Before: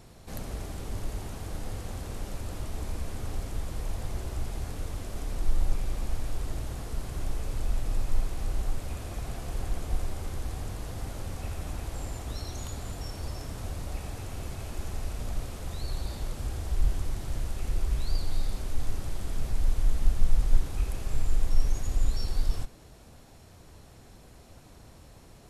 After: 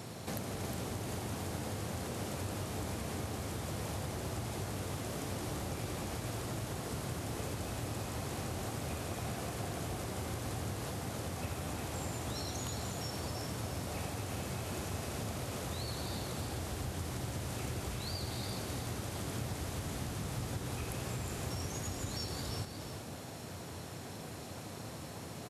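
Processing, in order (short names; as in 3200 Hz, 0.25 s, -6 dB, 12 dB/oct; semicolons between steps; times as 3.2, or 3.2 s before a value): HPF 95 Hz 24 dB/oct; compressor, threshold -45 dBFS, peak gain reduction 11.5 dB; echo 0.36 s -7.5 dB; gain +8.5 dB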